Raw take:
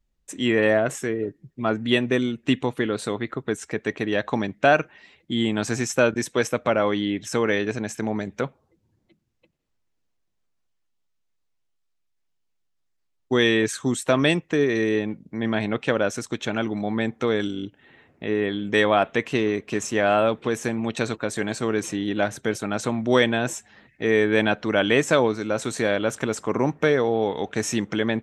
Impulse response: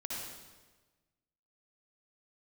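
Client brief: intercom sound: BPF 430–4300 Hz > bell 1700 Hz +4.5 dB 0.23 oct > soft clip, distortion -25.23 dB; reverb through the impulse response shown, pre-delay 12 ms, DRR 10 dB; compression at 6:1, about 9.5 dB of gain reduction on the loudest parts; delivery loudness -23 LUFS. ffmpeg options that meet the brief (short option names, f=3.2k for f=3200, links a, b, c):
-filter_complex "[0:a]acompressor=threshold=-24dB:ratio=6,asplit=2[a][b];[1:a]atrim=start_sample=2205,adelay=12[c];[b][c]afir=irnorm=-1:irlink=0,volume=-11.5dB[d];[a][d]amix=inputs=2:normalize=0,highpass=430,lowpass=4.3k,equalizer=f=1.7k:t=o:w=0.23:g=4.5,asoftclip=threshold=-16dB,volume=9.5dB"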